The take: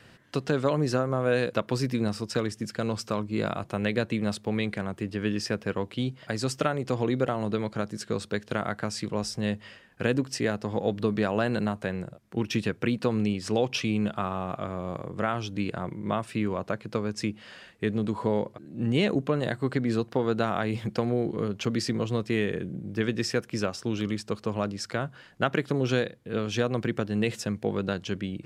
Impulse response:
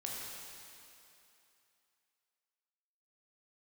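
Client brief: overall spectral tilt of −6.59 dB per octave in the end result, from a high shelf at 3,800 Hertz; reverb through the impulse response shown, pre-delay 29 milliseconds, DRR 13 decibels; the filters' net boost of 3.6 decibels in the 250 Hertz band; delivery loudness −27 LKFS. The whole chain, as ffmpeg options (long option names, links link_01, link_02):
-filter_complex "[0:a]equalizer=frequency=250:width_type=o:gain=4.5,highshelf=frequency=3800:gain=-7.5,asplit=2[link_01][link_02];[1:a]atrim=start_sample=2205,adelay=29[link_03];[link_02][link_03]afir=irnorm=-1:irlink=0,volume=-14dB[link_04];[link_01][link_04]amix=inputs=2:normalize=0"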